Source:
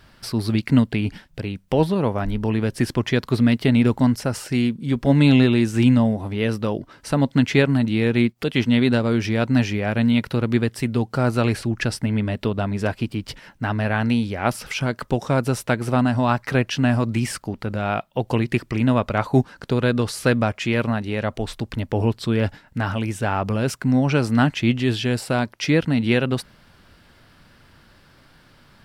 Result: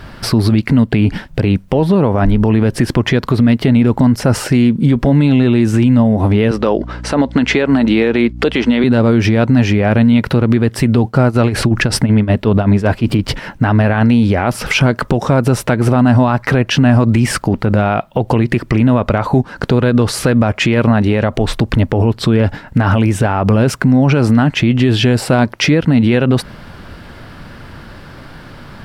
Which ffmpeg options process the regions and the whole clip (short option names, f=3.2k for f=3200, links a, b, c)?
-filter_complex "[0:a]asettb=1/sr,asplit=3[a][b][c];[a]atrim=end=6.514[d];[b]atrim=start=6.51:end=8.84,asetpts=PTS-STARTPTS,afade=t=in:d=0.004:c=qsin,afade=t=out:st=2.326:d=0.004:c=qsin,highpass=310,lowpass=7.6k,aeval=exprs='val(0)+0.00562*(sin(2*PI*60*n/s)+sin(2*PI*2*60*n/s)/2+sin(2*PI*3*60*n/s)/3+sin(2*PI*4*60*n/s)/4+sin(2*PI*5*60*n/s)/5)':c=same[e];[c]atrim=start=8.836[f];[d][e]acrossfade=d=0.004:c1=hsin:c2=qsin[g];[g][f]acrossfade=d=0.004:c1=qsin:c2=hsin,asettb=1/sr,asplit=3[h][i][j];[h]atrim=end=11.044[k];[i]atrim=start=11.04:end=13.19,asetpts=PTS-STARTPTS,afade=t=in:d=0.004:c=qsin,afade=t=out:st=2.146:d=0.004:c=qsin,acontrast=56,tremolo=f=5.3:d=0.87[l];[j]atrim=start=13.186[m];[k][l]acrossfade=d=0.004:c1=hsin:c2=qsin[n];[n][m]acrossfade=d=0.004:c1=qsin:c2=hsin,highshelf=f=2.4k:g=-9.5,acompressor=threshold=-23dB:ratio=5,alimiter=level_in=22dB:limit=-1dB:release=50:level=0:latency=1,volume=-2.5dB"